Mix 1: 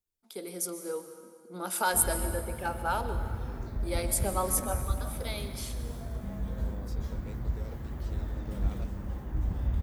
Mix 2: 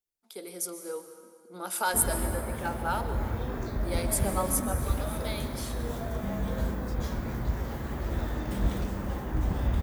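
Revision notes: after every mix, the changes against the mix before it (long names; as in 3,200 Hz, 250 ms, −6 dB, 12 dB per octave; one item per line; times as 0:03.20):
background +11.0 dB
master: add low-shelf EQ 180 Hz −10.5 dB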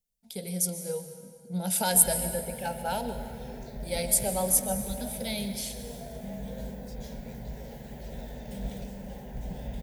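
first voice: remove four-pole ladder high-pass 270 Hz, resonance 25%
background −4.0 dB
master: add phaser with its sweep stopped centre 320 Hz, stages 6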